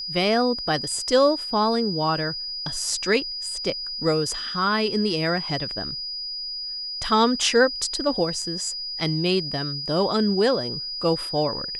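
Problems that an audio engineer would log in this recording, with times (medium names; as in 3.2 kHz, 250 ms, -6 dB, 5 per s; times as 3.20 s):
whine 4.9 kHz -29 dBFS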